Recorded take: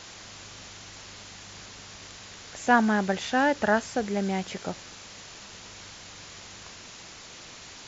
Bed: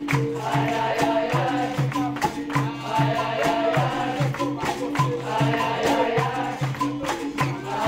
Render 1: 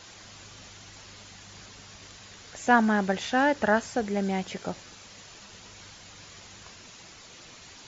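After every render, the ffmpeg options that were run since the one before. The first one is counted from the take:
ffmpeg -i in.wav -af "afftdn=noise_reduction=6:noise_floor=-46" out.wav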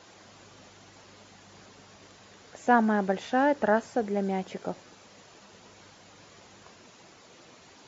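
ffmpeg -i in.wav -af "highpass=frequency=600:poles=1,tiltshelf=frequency=970:gain=9" out.wav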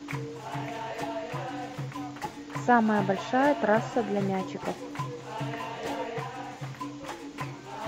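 ffmpeg -i in.wav -i bed.wav -filter_complex "[1:a]volume=-12.5dB[link_01];[0:a][link_01]amix=inputs=2:normalize=0" out.wav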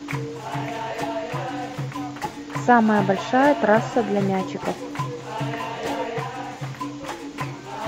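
ffmpeg -i in.wav -af "volume=6.5dB,alimiter=limit=-3dB:level=0:latency=1" out.wav

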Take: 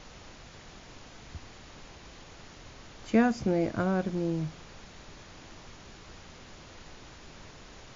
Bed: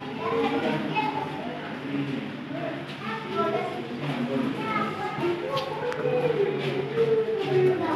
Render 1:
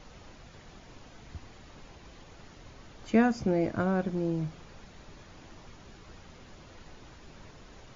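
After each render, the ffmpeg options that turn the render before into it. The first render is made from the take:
ffmpeg -i in.wav -af "afftdn=noise_reduction=6:noise_floor=-51" out.wav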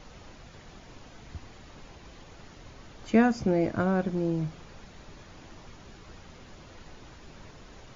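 ffmpeg -i in.wav -af "volume=2dB" out.wav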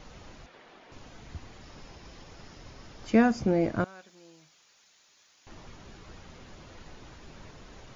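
ffmpeg -i in.wav -filter_complex "[0:a]asettb=1/sr,asplit=3[link_01][link_02][link_03];[link_01]atrim=end=0.464[link_04];[link_02]atrim=start=0.46:end=0.92,asetpts=PTS-STARTPTS,afade=type=in:duration=0.004:curve=qsin,afade=type=out:start_time=0.456:duration=0.004:curve=qsin,acrossover=split=260 4100:gain=0.0708 1 0.2[link_05][link_06][link_07];[link_05][link_06][link_07]amix=inputs=3:normalize=0[link_08];[link_03]atrim=start=0.916[link_09];[link_04][link_08]acrossfade=duration=0.004:curve1=hsin:curve2=qsin[link_10];[link_10][link_09]acrossfade=duration=0.004:curve1=qsin:curve2=hsin,asettb=1/sr,asplit=3[link_11][link_12][link_13];[link_11]atrim=end=1.614[link_14];[link_12]atrim=start=1.61:end=3.31,asetpts=PTS-STARTPTS,afade=type=in:duration=0.004:curve=qsin,afade=type=out:start_time=1.696:duration=0.004:curve=qsin,equalizer=frequency=5200:width=6.8:gain=7[link_15];[link_13]atrim=start=3.306[link_16];[link_14][link_15]acrossfade=duration=0.004:curve1=hsin:curve2=qsin[link_17];[link_17][link_16]acrossfade=duration=0.004:curve1=qsin:curve2=hsin,asettb=1/sr,asplit=3[link_18][link_19][link_20];[link_18]atrim=end=3.844[link_21];[link_19]atrim=start=3.84:end=5.47,asetpts=PTS-STARTPTS,afade=type=in:duration=0.004:curve=qsin,afade=type=out:start_time=1.626:duration=0.004:curve=qsin,aderivative[link_22];[link_20]atrim=start=5.466[link_23];[link_21][link_22]acrossfade=duration=0.004:curve1=hsin:curve2=qsin[link_24];[link_24][link_23]acrossfade=duration=0.004:curve1=qsin:curve2=hsin" out.wav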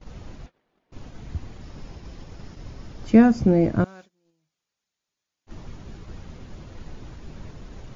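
ffmpeg -i in.wav -af "agate=range=-23dB:threshold=-49dB:ratio=16:detection=peak,lowshelf=frequency=380:gain=11.5" out.wav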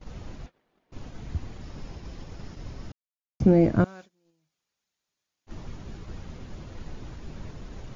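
ffmpeg -i in.wav -filter_complex "[0:a]asplit=3[link_01][link_02][link_03];[link_01]atrim=end=2.92,asetpts=PTS-STARTPTS,afade=type=out:start_time=2.916:duration=0.004:curve=hsin[link_04];[link_02]atrim=start=2.92:end=3.4,asetpts=PTS-STARTPTS,volume=0[link_05];[link_03]atrim=start=3.4,asetpts=PTS-STARTPTS,afade=type=in:duration=0.004:curve=hsin[link_06];[link_04][link_05][link_06]concat=n=3:v=0:a=1" out.wav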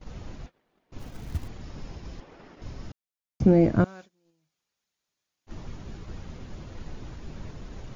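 ffmpeg -i in.wav -filter_complex "[0:a]asplit=3[link_01][link_02][link_03];[link_01]afade=type=out:start_time=0.98:duration=0.02[link_04];[link_02]acrusher=bits=5:mode=log:mix=0:aa=0.000001,afade=type=in:start_time=0.98:duration=0.02,afade=type=out:start_time=1.47:duration=0.02[link_05];[link_03]afade=type=in:start_time=1.47:duration=0.02[link_06];[link_04][link_05][link_06]amix=inputs=3:normalize=0,asettb=1/sr,asplit=3[link_07][link_08][link_09];[link_07]atrim=end=2.204[link_10];[link_08]atrim=start=2.2:end=2.62,asetpts=PTS-STARTPTS,afade=type=in:duration=0.004:curve=qsin,afade=type=out:start_time=0.416:duration=0.004:curve=qsin,acrossover=split=240 3100:gain=0.112 1 0.224[link_11][link_12][link_13];[link_11][link_12][link_13]amix=inputs=3:normalize=0[link_14];[link_09]atrim=start=2.616[link_15];[link_10][link_14]acrossfade=duration=0.004:curve1=hsin:curve2=qsin[link_16];[link_16][link_15]acrossfade=duration=0.004:curve1=qsin:curve2=hsin" out.wav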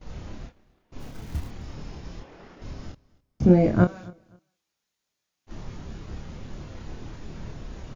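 ffmpeg -i in.wav -filter_complex "[0:a]asplit=2[link_01][link_02];[link_02]adelay=28,volume=-3dB[link_03];[link_01][link_03]amix=inputs=2:normalize=0,aecho=1:1:260|520:0.0668|0.0154" out.wav

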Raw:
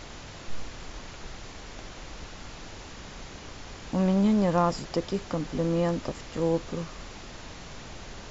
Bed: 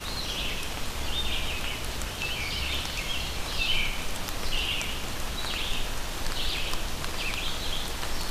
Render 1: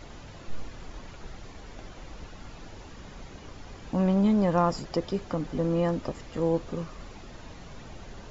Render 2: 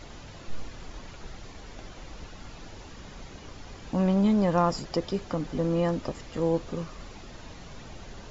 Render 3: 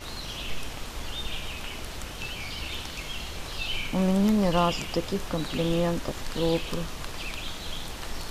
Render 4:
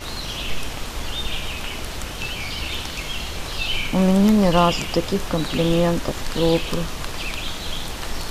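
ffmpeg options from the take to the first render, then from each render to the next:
ffmpeg -i in.wav -af "afftdn=noise_reduction=8:noise_floor=-44" out.wav
ffmpeg -i in.wav -af "equalizer=frequency=5100:width=0.59:gain=3" out.wav
ffmpeg -i in.wav -i bed.wav -filter_complex "[1:a]volume=-5dB[link_01];[0:a][link_01]amix=inputs=2:normalize=0" out.wav
ffmpeg -i in.wav -af "volume=7dB" out.wav

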